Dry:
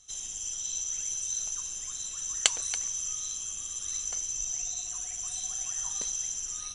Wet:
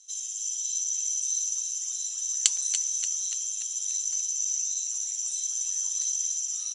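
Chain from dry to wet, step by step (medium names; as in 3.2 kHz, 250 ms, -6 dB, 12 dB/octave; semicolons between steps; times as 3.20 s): band-pass filter 6.3 kHz, Q 1.3; frequency-shifting echo 290 ms, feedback 58%, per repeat -75 Hz, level -9 dB; trim +4 dB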